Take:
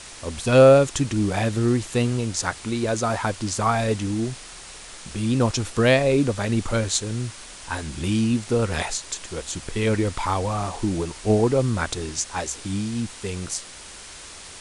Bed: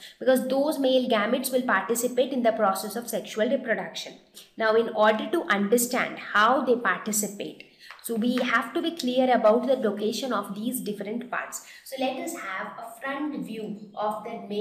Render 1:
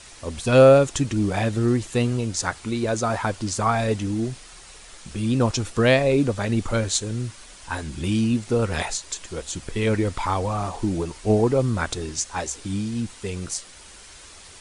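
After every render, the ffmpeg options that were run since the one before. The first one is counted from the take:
-af "afftdn=nr=6:nf=-41"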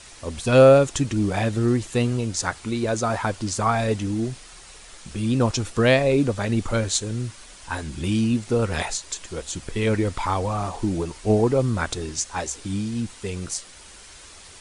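-af anull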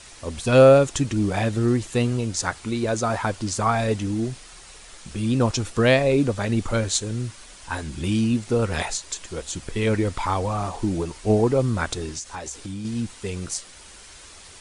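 -filter_complex "[0:a]asettb=1/sr,asplit=3[s0][s1][s2];[s0]atrim=end=12.174[s3];[s1]atrim=start=12.17:end=12.85,asetpts=PTS-STARTPTS,afade=t=in:d=0.004:c=qsin,afade=t=out:st=0.676:d=0.004:c=qsin,acompressor=threshold=0.0355:ratio=6:attack=3.2:release=140:knee=1:detection=peak[s4];[s2]atrim=start=12.846[s5];[s3][s4]acrossfade=d=0.004:c1=hsin:c2=qsin[s6];[s6][s5]acrossfade=d=0.004:c1=qsin:c2=hsin"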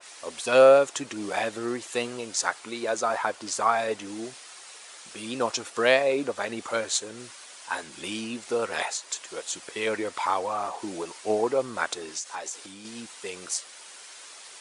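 -af "highpass=510,adynamicequalizer=threshold=0.0112:dfrequency=2300:dqfactor=0.7:tfrequency=2300:tqfactor=0.7:attack=5:release=100:ratio=0.375:range=3:mode=cutabove:tftype=highshelf"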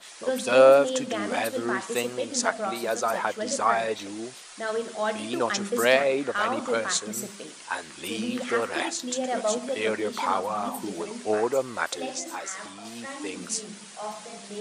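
-filter_complex "[1:a]volume=0.422[s0];[0:a][s0]amix=inputs=2:normalize=0"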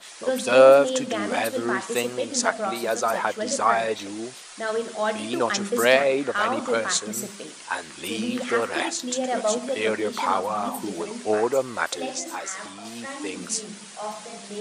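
-af "volume=1.33"

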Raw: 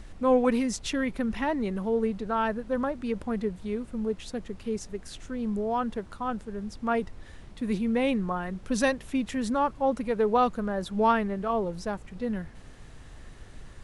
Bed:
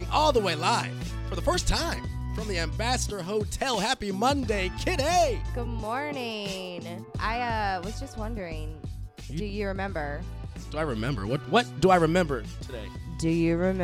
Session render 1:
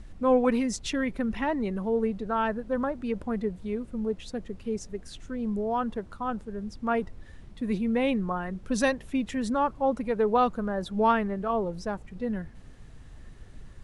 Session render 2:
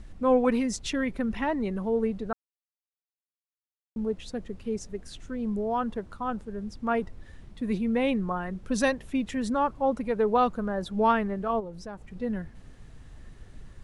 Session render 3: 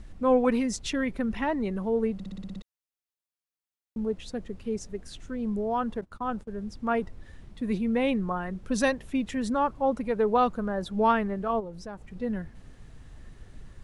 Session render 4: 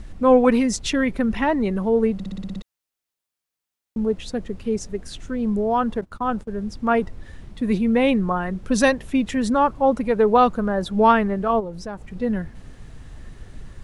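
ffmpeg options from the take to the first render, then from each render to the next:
-af "afftdn=nr=6:nf=-47"
-filter_complex "[0:a]asplit=3[s0][s1][s2];[s0]afade=t=out:st=11.59:d=0.02[s3];[s1]acompressor=threshold=0.00891:ratio=2:attack=3.2:release=140:knee=1:detection=peak,afade=t=in:st=11.59:d=0.02,afade=t=out:st=12.09:d=0.02[s4];[s2]afade=t=in:st=12.09:d=0.02[s5];[s3][s4][s5]amix=inputs=3:normalize=0,asplit=3[s6][s7][s8];[s6]atrim=end=2.33,asetpts=PTS-STARTPTS,afade=t=out:st=2.326:d=0.004:c=hsin[s9];[s7]atrim=start=2.33:end=3.96,asetpts=PTS-STARTPTS,volume=0[s10];[s8]atrim=start=3.96,asetpts=PTS-STARTPTS,afade=t=in:d=0.004:c=hsin[s11];[s9][s10][s11]concat=n=3:v=0:a=1"
-filter_complex "[0:a]asettb=1/sr,asplit=3[s0][s1][s2];[s0]atrim=end=6.014[s3];[s1]atrim=start=6.01:end=6.59,asetpts=PTS-STARTPTS,afade=t=in:d=0.004:c=qsin,afade=t=out:st=0.576:d=0.004:c=qsin,agate=range=0.1:threshold=0.00631:ratio=16:release=100:detection=peak[s4];[s2]atrim=start=6.586[s5];[s3][s4]acrossfade=d=0.004:c1=hsin:c2=qsin[s6];[s6][s5]acrossfade=d=0.004:c1=qsin:c2=hsin,asplit=9[s7][s8][s9][s10][s11][s12][s13][s14][s15];[s7]atrim=end=2.202[s16];[s8]atrim=start=2.138:end=2.202[s17];[s9]atrim=start=2.138:end=2.202[s18];[s10]atrim=start=2.138:end=2.202[s19];[s11]atrim=start=2.138:end=2.202[s20];[s12]atrim=start=2.138:end=2.202[s21];[s13]atrim=start=2.138:end=2.202[s22];[s14]atrim=start=2.138:end=2.202[s23];[s15]atrim=start=2.618[s24];[s16][s17]acrossfade=d=0.004:c1=hsin:c2=hsin[s25];[s25][s18]acrossfade=d=0.004:c1=hsin:c2=hsin[s26];[s26][s19]acrossfade=d=0.004:c1=hsin:c2=hsin[s27];[s27][s20]acrossfade=d=0.004:c1=hsin:c2=hsin[s28];[s28][s21]acrossfade=d=0.004:c1=hsin:c2=hsin[s29];[s29][s22]acrossfade=d=0.004:c1=hsin:c2=hsin[s30];[s30][s23]acrossfade=d=0.004:c1=hsin:c2=hsin[s31];[s31][s24]acrossfade=d=0.004:c1=hsin:c2=hsin"
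-af "volume=2.37"

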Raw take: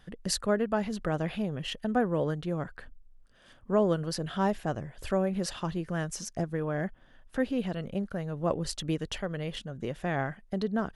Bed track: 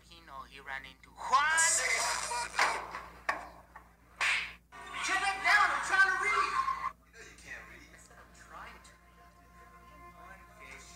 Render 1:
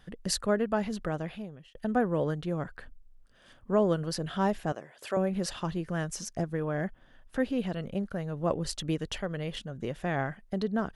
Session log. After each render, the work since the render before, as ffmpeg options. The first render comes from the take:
-filter_complex "[0:a]asettb=1/sr,asplit=3[s0][s1][s2];[s0]atrim=end=4.724[s3];[s1]atrim=start=4.72:end=5.17,asetpts=PTS-STARTPTS,afade=t=in:d=0.004:c=qsin,afade=t=out:st=0.446:d=0.004:c=qsin,highpass=380[s4];[s2]atrim=start=5.166[s5];[s3][s4]acrossfade=d=0.004:c1=hsin:c2=qsin[s6];[s6][s5]acrossfade=d=0.004:c1=qsin:c2=hsin,asplit=2[s7][s8];[s7]atrim=end=1.75,asetpts=PTS-STARTPTS,afade=t=out:st=0.91:d=0.84[s9];[s8]atrim=start=1.75,asetpts=PTS-STARTPTS,afade=t=in:d=0.004:c=hsin[s10];[s9][s10]concat=n=2:v=0:a=1"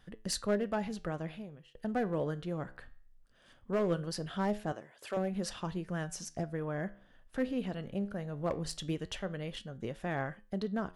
-af "asoftclip=type=hard:threshold=0.0944,flanger=delay=9.1:depth=6.6:regen=82:speed=0.2:shape=sinusoidal"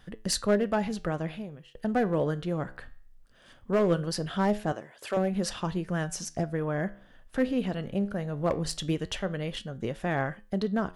-af "volume=2.11"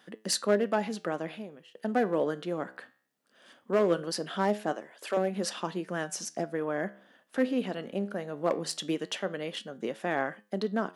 -af "highpass=f=220:w=0.5412,highpass=f=220:w=1.3066"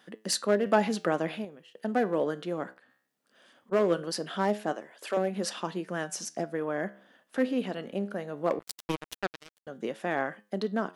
-filter_complex "[0:a]asettb=1/sr,asplit=3[s0][s1][s2];[s0]atrim=end=0.664[s3];[s1]atrim=start=0.66:end=1.45,asetpts=PTS-STARTPTS,afade=t=in:d=0.004:c=qsin,afade=t=out:st=0.786:d=0.004:c=qsin,acontrast=27[s4];[s2]atrim=start=1.446[s5];[s3][s4]acrossfade=d=0.004:c1=hsin:c2=qsin[s6];[s6][s5]acrossfade=d=0.004:c1=qsin:c2=hsin,asplit=3[s7][s8][s9];[s7]afade=t=out:st=2.73:d=0.02[s10];[s8]acompressor=threshold=0.00178:ratio=10:attack=3.2:release=140:knee=1:detection=peak,afade=t=in:st=2.73:d=0.02,afade=t=out:st=3.71:d=0.02[s11];[s9]afade=t=in:st=3.71:d=0.02[s12];[s10][s11][s12]amix=inputs=3:normalize=0,asettb=1/sr,asplit=3[s13][s14][s15];[s13]atrim=end=8.594[s16];[s14]atrim=start=8.59:end=9.67,asetpts=PTS-STARTPTS,afade=t=in:d=0.004:c=qsin,afade=t=out:st=1.076:d=0.004:c=qsin,acrusher=bits=3:mix=0:aa=0.5[s17];[s15]atrim=start=9.666[s18];[s16][s17]acrossfade=d=0.004:c1=hsin:c2=qsin[s19];[s19][s18]acrossfade=d=0.004:c1=qsin:c2=hsin"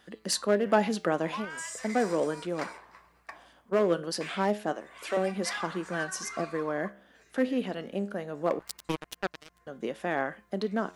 -filter_complex "[1:a]volume=0.251[s0];[0:a][s0]amix=inputs=2:normalize=0"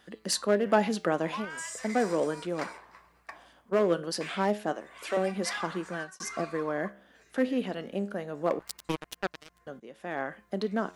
-filter_complex "[0:a]asplit=3[s0][s1][s2];[s0]atrim=end=6.2,asetpts=PTS-STARTPTS,afade=t=out:st=5.71:d=0.49:c=qsin[s3];[s1]atrim=start=6.2:end=9.8,asetpts=PTS-STARTPTS,afade=t=in:d=0.004:c=hsin,afade=t=out:st=3.596:d=0.004:c=hsin:silence=0.105925[s4];[s2]atrim=start=9.8,asetpts=PTS-STARTPTS,afade=t=in:d=0.64:silence=0.105925[s5];[s3][s4][s5]concat=n=3:v=0:a=1"

